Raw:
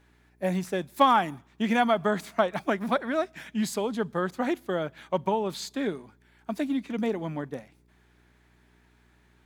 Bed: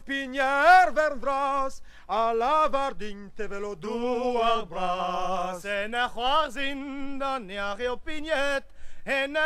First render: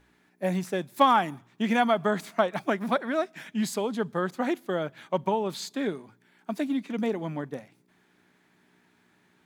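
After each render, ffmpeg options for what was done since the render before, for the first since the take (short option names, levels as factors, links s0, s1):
-af "bandreject=f=60:t=h:w=4,bandreject=f=120:t=h:w=4"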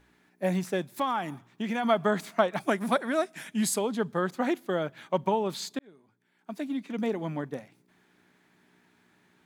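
-filter_complex "[0:a]asplit=3[s0][s1][s2];[s0]afade=t=out:st=0.92:d=0.02[s3];[s1]acompressor=threshold=0.0282:ratio=2:attack=3.2:release=140:knee=1:detection=peak,afade=t=in:st=0.92:d=0.02,afade=t=out:st=1.83:d=0.02[s4];[s2]afade=t=in:st=1.83:d=0.02[s5];[s3][s4][s5]amix=inputs=3:normalize=0,asettb=1/sr,asplit=3[s6][s7][s8];[s6]atrim=end=2.604[s9];[s7]atrim=start=2.6:end=3.79,asetpts=PTS-STARTPTS,afade=t=in:d=0.004:c=qsin,afade=t=out:st=1.186:d=0.004:c=qsin,equalizer=f=9700:w=1.1:g=11.5[s10];[s8]atrim=start=3.786[s11];[s9][s10]acrossfade=d=0.004:c1=hsin:c2=qsin[s12];[s12][s11]acrossfade=d=0.004:c1=qsin:c2=hsin,asplit=2[s13][s14];[s13]atrim=end=5.79,asetpts=PTS-STARTPTS,afade=t=out:st=5.786:d=0.004:c=hsin[s15];[s14]atrim=start=5.79,asetpts=PTS-STARTPTS,afade=t=in:d=1.5[s16];[s15][s16]concat=n=2:v=0:a=1"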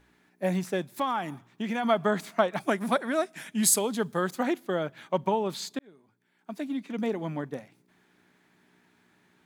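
-filter_complex "[0:a]asettb=1/sr,asplit=3[s0][s1][s2];[s0]atrim=end=3.634[s3];[s1]atrim=start=3.63:end=4.43,asetpts=PTS-STARTPTS,afade=t=in:d=0.004:c=qsin,afade=t=out:st=0.796:d=0.004:c=qsin,highshelf=f=4800:g=11[s4];[s2]atrim=start=4.426[s5];[s3][s4]acrossfade=d=0.004:c1=hsin:c2=qsin[s6];[s6][s5]acrossfade=d=0.004:c1=qsin:c2=hsin"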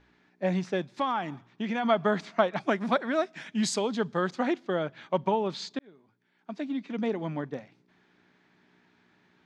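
-af "lowpass=f=5700:w=0.5412,lowpass=f=5700:w=1.3066"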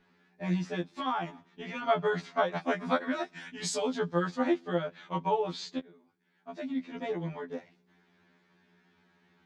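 -af "afftfilt=real='re*2*eq(mod(b,4),0)':imag='im*2*eq(mod(b,4),0)':win_size=2048:overlap=0.75"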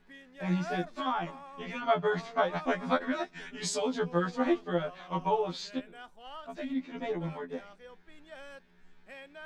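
-filter_complex "[1:a]volume=0.0794[s0];[0:a][s0]amix=inputs=2:normalize=0"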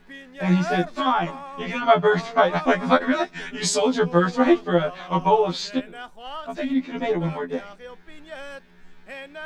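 -af "volume=3.35,alimiter=limit=0.708:level=0:latency=1"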